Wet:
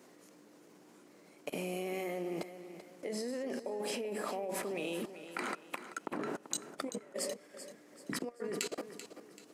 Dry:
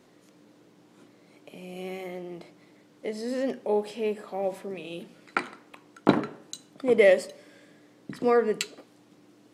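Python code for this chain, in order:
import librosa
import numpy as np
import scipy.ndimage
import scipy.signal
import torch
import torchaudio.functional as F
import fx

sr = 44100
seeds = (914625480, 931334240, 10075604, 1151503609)

y = fx.peak_eq(x, sr, hz=3600.0, db=-6.0, octaves=0.64)
y = fx.over_compress(y, sr, threshold_db=-30.0, ratio=-0.5)
y = scipy.signal.sosfilt(scipy.signal.butter(2, 210.0, 'highpass', fs=sr, output='sos'), y)
y = fx.level_steps(y, sr, step_db=22)
y = fx.high_shelf(y, sr, hz=5200.0, db=6.0)
y = fx.echo_feedback(y, sr, ms=386, feedback_pct=39, wet_db=-12)
y = y * 10.0 ** (6.0 / 20.0)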